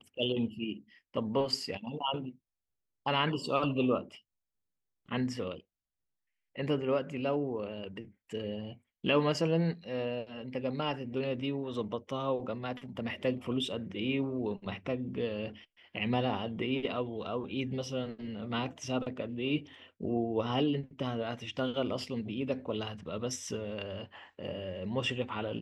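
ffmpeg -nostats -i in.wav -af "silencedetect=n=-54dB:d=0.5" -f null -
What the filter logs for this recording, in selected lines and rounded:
silence_start: 2.36
silence_end: 3.06 | silence_duration: 0.70
silence_start: 4.19
silence_end: 5.09 | silence_duration: 0.90
silence_start: 5.60
silence_end: 6.55 | silence_duration: 0.95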